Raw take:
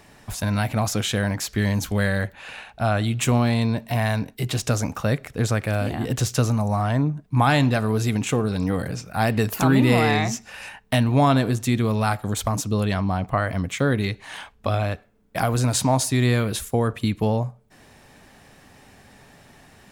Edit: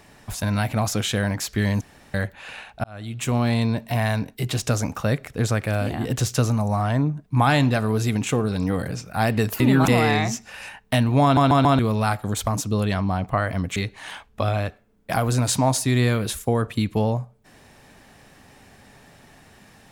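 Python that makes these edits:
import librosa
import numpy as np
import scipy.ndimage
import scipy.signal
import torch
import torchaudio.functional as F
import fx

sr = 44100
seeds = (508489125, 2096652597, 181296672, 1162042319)

y = fx.edit(x, sr, fx.room_tone_fill(start_s=1.81, length_s=0.33),
    fx.fade_in_span(start_s=2.84, length_s=0.69),
    fx.reverse_span(start_s=9.6, length_s=0.28),
    fx.stutter_over(start_s=11.23, slice_s=0.14, count=4),
    fx.cut(start_s=13.76, length_s=0.26), tone=tone)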